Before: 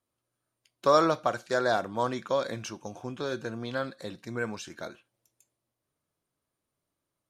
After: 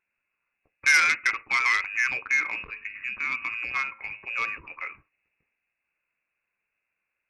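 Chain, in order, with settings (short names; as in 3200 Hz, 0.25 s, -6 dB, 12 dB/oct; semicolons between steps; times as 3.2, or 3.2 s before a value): 2.34–4.57 de-hum 102.9 Hz, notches 38; inverted band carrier 2700 Hz; core saturation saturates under 3900 Hz; gain +4 dB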